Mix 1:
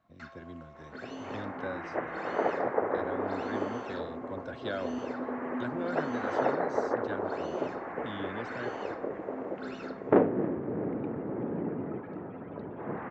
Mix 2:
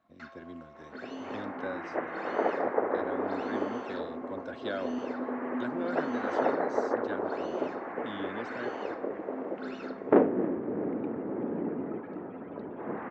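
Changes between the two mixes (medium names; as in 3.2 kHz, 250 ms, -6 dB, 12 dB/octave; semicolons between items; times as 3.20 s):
first sound: add low-pass 6.3 kHz 12 dB/octave; master: add resonant low shelf 180 Hz -6 dB, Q 1.5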